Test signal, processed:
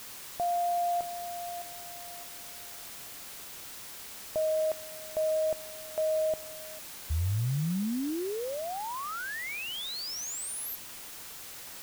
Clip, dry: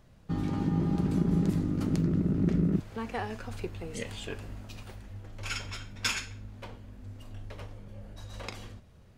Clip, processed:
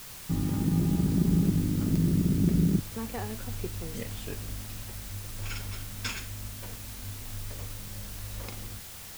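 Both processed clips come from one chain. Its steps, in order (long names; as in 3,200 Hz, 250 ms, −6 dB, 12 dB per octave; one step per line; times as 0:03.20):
low-shelf EQ 340 Hz +10 dB
background noise white −39 dBFS
level −5.5 dB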